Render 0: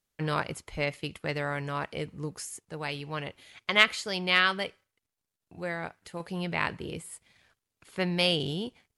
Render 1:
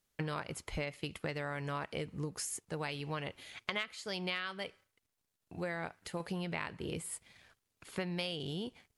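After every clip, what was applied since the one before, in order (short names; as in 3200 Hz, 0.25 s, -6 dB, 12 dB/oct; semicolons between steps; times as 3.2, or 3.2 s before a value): compressor 12:1, threshold -36 dBFS, peak gain reduction 22.5 dB; gain +2 dB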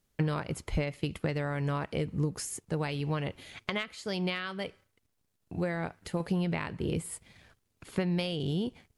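low shelf 470 Hz +9.5 dB; gain +1.5 dB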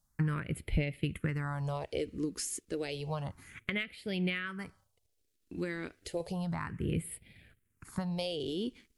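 phaser stages 4, 0.31 Hz, lowest notch 120–1100 Hz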